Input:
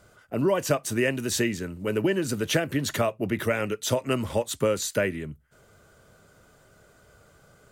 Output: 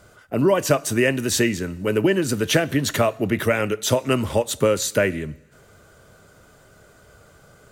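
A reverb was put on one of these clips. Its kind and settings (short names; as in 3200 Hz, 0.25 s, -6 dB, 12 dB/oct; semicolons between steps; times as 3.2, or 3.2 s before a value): two-slope reverb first 0.93 s, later 2.7 s, from -18 dB, DRR 20 dB; gain +5.5 dB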